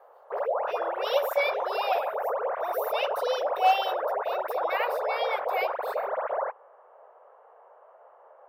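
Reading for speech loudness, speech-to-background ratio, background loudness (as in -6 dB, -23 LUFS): -31.0 LUFS, -1.0 dB, -30.0 LUFS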